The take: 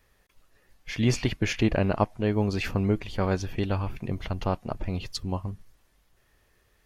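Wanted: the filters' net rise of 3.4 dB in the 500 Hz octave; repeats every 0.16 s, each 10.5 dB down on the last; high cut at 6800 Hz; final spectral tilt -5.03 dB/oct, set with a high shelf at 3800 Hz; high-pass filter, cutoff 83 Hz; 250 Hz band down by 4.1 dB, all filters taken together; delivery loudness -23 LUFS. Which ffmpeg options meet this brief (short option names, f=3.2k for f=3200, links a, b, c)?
-af "highpass=83,lowpass=6.8k,equalizer=f=250:t=o:g=-7.5,equalizer=f=500:t=o:g=6.5,highshelf=f=3.8k:g=3,aecho=1:1:160|320|480:0.299|0.0896|0.0269,volume=5dB"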